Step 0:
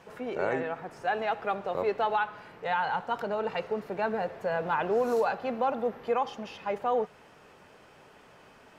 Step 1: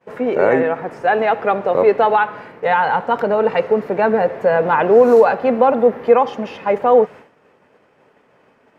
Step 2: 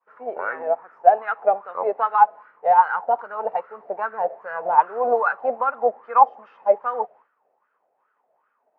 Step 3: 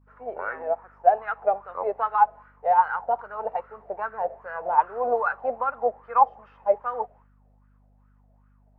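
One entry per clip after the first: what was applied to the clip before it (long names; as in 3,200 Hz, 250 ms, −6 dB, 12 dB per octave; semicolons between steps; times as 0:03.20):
downward expander −45 dBFS; octave-band graphic EQ 125/250/500/1,000/2,000 Hz +6/+9/+10/+5/+8 dB; level +4 dB
LFO wah 2.5 Hz 660–1,400 Hz, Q 6.6; expander for the loud parts 1.5 to 1, over −40 dBFS; level +8.5 dB
mains hum 50 Hz, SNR 33 dB; level −4 dB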